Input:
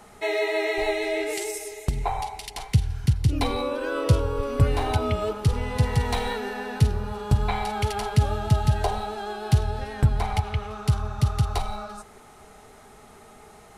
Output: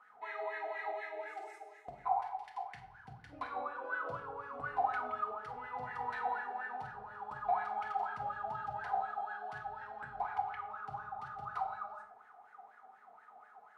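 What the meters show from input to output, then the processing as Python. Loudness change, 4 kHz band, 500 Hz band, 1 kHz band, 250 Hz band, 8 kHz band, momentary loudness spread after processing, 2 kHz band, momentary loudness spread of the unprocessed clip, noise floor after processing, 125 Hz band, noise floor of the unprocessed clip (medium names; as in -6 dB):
-14.0 dB, under -25 dB, -17.0 dB, -5.5 dB, -27.5 dB, under -30 dB, 20 LU, -9.0 dB, 8 LU, -61 dBFS, -35.0 dB, -50 dBFS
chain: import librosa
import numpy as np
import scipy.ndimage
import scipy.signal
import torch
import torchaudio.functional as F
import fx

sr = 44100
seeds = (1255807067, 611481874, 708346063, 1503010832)

y = fx.wah_lfo(x, sr, hz=4.1, low_hz=700.0, high_hz=1700.0, q=13.0)
y = fx.room_shoebox(y, sr, seeds[0], volume_m3=1000.0, walls='furnished', distance_m=1.9)
y = F.gain(torch.from_numpy(y), 2.0).numpy()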